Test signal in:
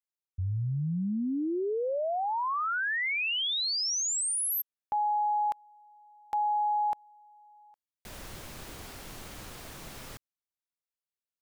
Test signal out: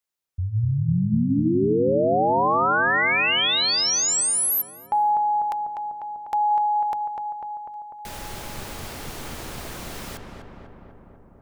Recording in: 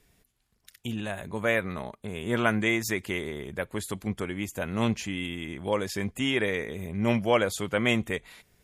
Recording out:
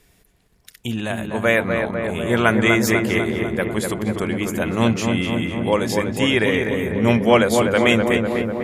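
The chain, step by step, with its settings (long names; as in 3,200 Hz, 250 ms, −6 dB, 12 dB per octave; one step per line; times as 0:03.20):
mains-hum notches 50/100/150/200/250/300 Hz
feedback echo with a low-pass in the loop 248 ms, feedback 76%, low-pass 1,800 Hz, level −4 dB
level +8 dB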